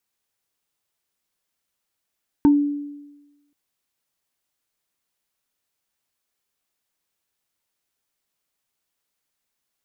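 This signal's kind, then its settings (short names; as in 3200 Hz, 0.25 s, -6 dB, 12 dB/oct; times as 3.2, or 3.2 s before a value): FM tone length 1.08 s, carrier 289 Hz, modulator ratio 2.12, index 0.52, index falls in 0.17 s exponential, decay 1.12 s, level -9 dB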